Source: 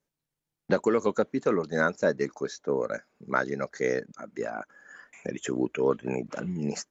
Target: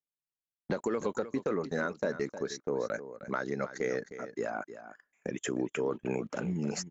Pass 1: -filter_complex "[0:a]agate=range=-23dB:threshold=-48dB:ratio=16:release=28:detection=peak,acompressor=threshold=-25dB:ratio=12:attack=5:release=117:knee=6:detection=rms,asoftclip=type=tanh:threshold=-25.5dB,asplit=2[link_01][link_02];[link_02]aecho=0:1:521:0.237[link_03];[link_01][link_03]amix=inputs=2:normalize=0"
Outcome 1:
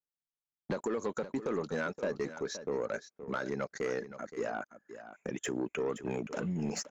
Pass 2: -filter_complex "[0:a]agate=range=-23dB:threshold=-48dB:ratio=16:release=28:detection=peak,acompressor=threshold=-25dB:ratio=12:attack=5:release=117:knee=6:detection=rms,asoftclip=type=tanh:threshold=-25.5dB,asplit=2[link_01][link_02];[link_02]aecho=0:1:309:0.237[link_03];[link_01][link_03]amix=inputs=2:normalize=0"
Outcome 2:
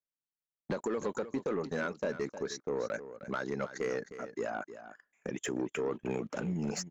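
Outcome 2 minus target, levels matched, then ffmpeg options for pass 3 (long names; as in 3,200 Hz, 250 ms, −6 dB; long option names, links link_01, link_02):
soft clipping: distortion +17 dB
-filter_complex "[0:a]agate=range=-23dB:threshold=-48dB:ratio=16:release=28:detection=peak,acompressor=threshold=-25dB:ratio=12:attack=5:release=117:knee=6:detection=rms,asoftclip=type=tanh:threshold=-14.5dB,asplit=2[link_01][link_02];[link_02]aecho=0:1:309:0.237[link_03];[link_01][link_03]amix=inputs=2:normalize=0"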